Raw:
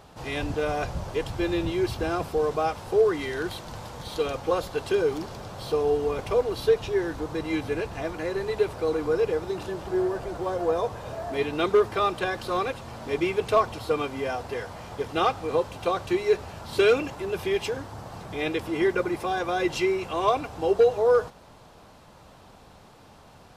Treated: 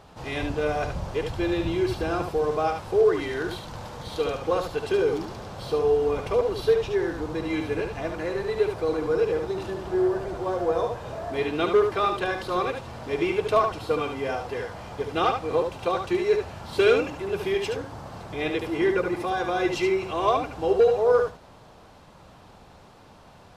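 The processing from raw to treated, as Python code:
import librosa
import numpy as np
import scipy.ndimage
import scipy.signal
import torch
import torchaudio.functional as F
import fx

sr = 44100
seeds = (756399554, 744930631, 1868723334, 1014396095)

y = fx.high_shelf(x, sr, hz=7700.0, db=-6.5)
y = y + 10.0 ** (-6.0 / 20.0) * np.pad(y, (int(73 * sr / 1000.0), 0))[:len(y)]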